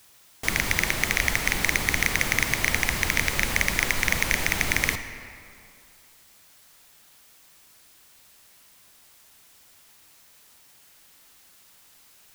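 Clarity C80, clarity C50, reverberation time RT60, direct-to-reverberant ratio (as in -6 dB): 10.5 dB, 9.5 dB, 2.4 s, 9.0 dB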